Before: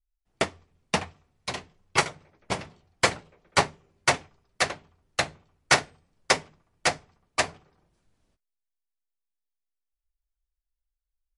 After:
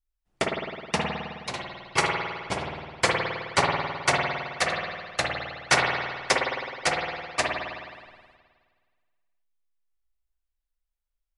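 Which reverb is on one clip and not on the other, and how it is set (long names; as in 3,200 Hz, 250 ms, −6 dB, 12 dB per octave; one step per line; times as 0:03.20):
spring reverb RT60 1.7 s, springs 52 ms, chirp 25 ms, DRR −1 dB
level −1.5 dB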